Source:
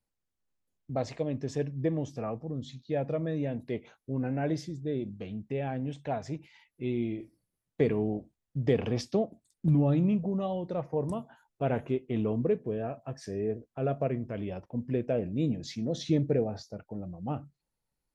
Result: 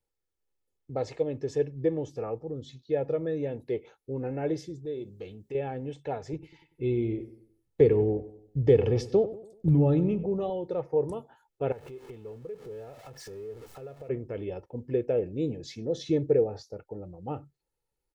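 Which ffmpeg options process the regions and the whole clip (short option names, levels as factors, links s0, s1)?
-filter_complex "[0:a]asettb=1/sr,asplit=3[s0][s1][s2];[s0]atrim=end=4.854[s3];[s1]atrim=start=4.85:end=5.55,asetpts=PTS-STARTPTS,afade=t=in:d=0.004:c=qsin,afade=t=out:st=0.696:d=0.004:c=qsin,acompressor=threshold=0.00708:ratio=1.5:attack=3.2:release=140:knee=1:detection=peak,highshelf=f=4000:g=11,bandreject=f=135.2:t=h:w=4,bandreject=f=270.4:t=h:w=4,bandreject=f=405.6:t=h:w=4,bandreject=f=540.8:t=h:w=4[s4];[s2]atrim=start=5.546[s5];[s3][s4]acrossfade=d=0.004:c1=hsin:c2=qsin[s6];[s6][s5]acrossfade=d=0.004:c1=qsin:c2=hsin,asettb=1/sr,asplit=3[s7][s8][s9];[s7]atrim=end=6.334[s10];[s8]atrim=start=6.33:end=10.5,asetpts=PTS-STARTPTS,afade=t=in:d=0.004:c=qsin,afade=t=out:st=4.166:d=0.004:c=qsin,lowshelf=f=160:g=12,asplit=2[s11][s12];[s12]adelay=96,lowpass=f=2600:p=1,volume=0.178,asplit=2[s13][s14];[s14]adelay=96,lowpass=f=2600:p=1,volume=0.44,asplit=2[s15][s16];[s16]adelay=96,lowpass=f=2600:p=1,volume=0.44,asplit=2[s17][s18];[s18]adelay=96,lowpass=f=2600:p=1,volume=0.44[s19];[s11][s13][s15][s17][s19]amix=inputs=5:normalize=0,atrim=end_sample=183897[s20];[s9]atrim=start=10.496[s21];[s10][s20]acrossfade=d=0.004:c1=hsin:c2=qsin[s22];[s22][s21]acrossfade=d=0.004:c1=qsin:c2=hsin,asettb=1/sr,asplit=3[s23][s24][s25];[s23]atrim=end=11.724[s26];[s24]atrim=start=11.72:end=14.09,asetpts=PTS-STARTPTS,afade=t=in:d=0.004:c=qsin,afade=t=out:st=2.366:d=0.004:c=qsin,aeval=exprs='val(0)+0.5*0.0075*sgn(val(0))':c=same,equalizer=f=310:w=1.6:g=-6.5,acompressor=threshold=0.00891:ratio=6:attack=3.2:release=140:knee=1:detection=peak[s27];[s25]atrim=start=14.086[s28];[s26][s27]acrossfade=d=0.004:c1=hsin:c2=qsin[s29];[s29][s28]acrossfade=d=0.004:c1=qsin:c2=hsin,equalizer=f=450:w=1.3:g=6,aecho=1:1:2.3:0.5,volume=0.708"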